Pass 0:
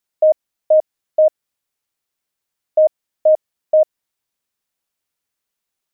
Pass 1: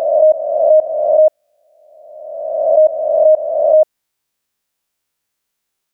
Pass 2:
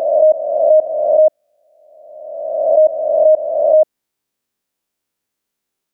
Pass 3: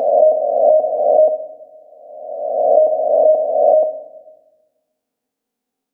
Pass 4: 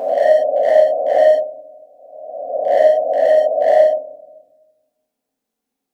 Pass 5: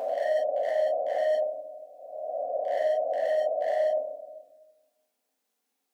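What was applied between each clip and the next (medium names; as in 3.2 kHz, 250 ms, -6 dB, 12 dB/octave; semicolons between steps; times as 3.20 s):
reverse spectral sustain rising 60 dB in 1.45 s; trim +2.5 dB
peaking EQ 290 Hz +7.5 dB 2 oct; trim -4 dB
small resonant body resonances 260/470/730 Hz, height 17 dB, ringing for 55 ms; on a send at -10 dB: reverberation RT60 1.1 s, pre-delay 5 ms; on the sum: trim -5 dB
overload inside the chain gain 7.5 dB; gated-style reverb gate 160 ms flat, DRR -6 dB; trim -7 dB
high-pass 830 Hz 6 dB/octave; reverse; compression 4:1, threshold -28 dBFS, peak gain reduction 14 dB; reverse; trim +2 dB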